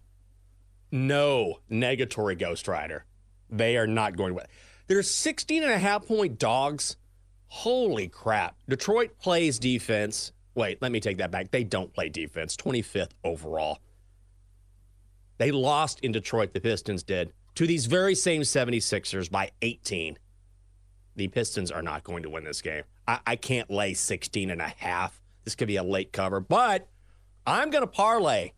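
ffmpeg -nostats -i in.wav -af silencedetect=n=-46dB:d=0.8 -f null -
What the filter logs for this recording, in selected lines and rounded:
silence_start: 0.00
silence_end: 0.92 | silence_duration: 0.92
silence_start: 13.76
silence_end: 15.40 | silence_duration: 1.63
silence_start: 20.17
silence_end: 21.16 | silence_duration: 1.00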